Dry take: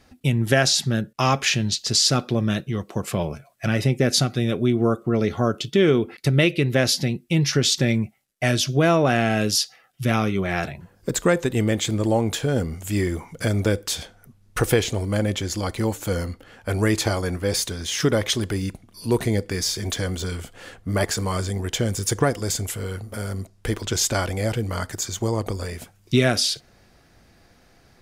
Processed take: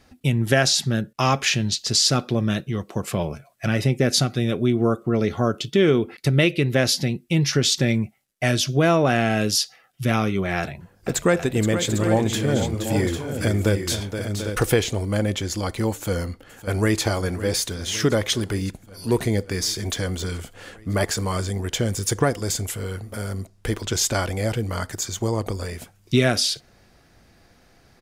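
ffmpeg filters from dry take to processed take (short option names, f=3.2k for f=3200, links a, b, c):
-filter_complex "[0:a]asettb=1/sr,asplit=3[a][b][c];[a]atrim=end=10.594[d];[b]atrim=start=10.59:end=14.63,asetpts=PTS-STARTPTS,afade=t=in:d=0.004:c=qsin,afade=t=out:st=4.036:d=0.004:c=qsin,aecho=1:1:473|741|800:0.376|0.282|0.355,atrim=end_sample=178164[e];[c]atrim=start=14.626[f];[d][e]acrossfade=d=0.004:c1=hsin:c2=qsin[g];[g][f]acrossfade=d=0.004:c1=qsin:c2=hsin,asplit=2[h][i];[i]afade=t=in:st=15.93:d=0.01,afade=t=out:st=17.02:d=0.01,aecho=0:1:560|1120|1680|2240|2800|3360|3920|4480|5040|5600|6160:0.188365|0.141274|0.105955|0.0794664|0.0595998|0.0446999|0.0335249|0.0251437|0.0188578|0.0141433|0.0106075[j];[h][j]amix=inputs=2:normalize=0"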